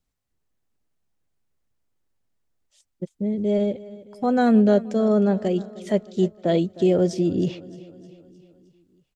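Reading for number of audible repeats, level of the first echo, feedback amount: 4, -18.5 dB, 56%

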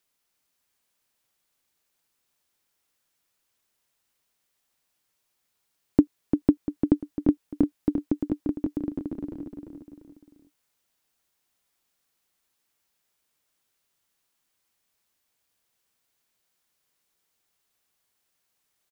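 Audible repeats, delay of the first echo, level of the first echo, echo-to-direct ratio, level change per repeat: 3, 0.346 s, -6.0 dB, -5.0 dB, -7.0 dB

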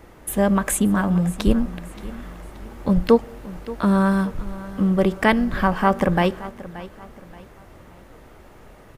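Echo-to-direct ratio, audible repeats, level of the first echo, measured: -16.5 dB, 2, -17.0 dB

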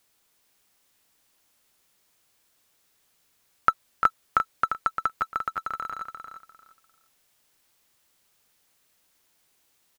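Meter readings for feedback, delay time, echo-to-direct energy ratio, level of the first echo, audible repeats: 22%, 0.348 s, -7.0 dB, -7.0 dB, 3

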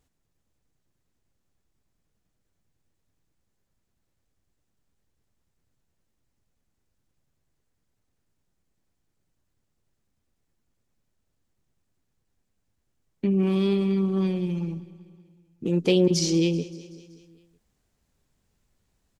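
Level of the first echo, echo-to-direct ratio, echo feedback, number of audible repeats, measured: -18.0 dB, -16.0 dB, 58%, 4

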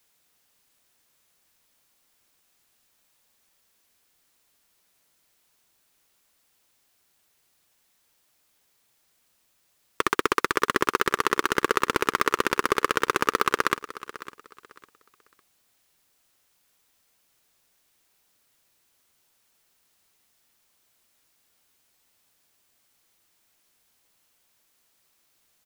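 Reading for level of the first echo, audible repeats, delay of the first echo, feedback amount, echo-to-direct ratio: -16.0 dB, 2, 0.554 s, 26%, -15.5 dB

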